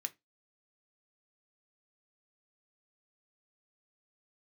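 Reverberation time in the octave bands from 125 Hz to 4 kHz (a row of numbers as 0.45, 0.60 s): 0.20, 0.25, 0.20, 0.20, 0.20, 0.15 s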